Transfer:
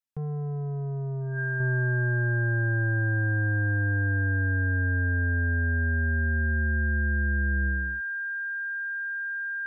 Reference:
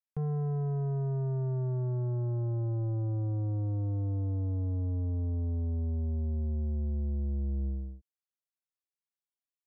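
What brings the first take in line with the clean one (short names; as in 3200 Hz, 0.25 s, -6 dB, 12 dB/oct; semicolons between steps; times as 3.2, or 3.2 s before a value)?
notch 1600 Hz, Q 30; gain 0 dB, from 1.6 s -5 dB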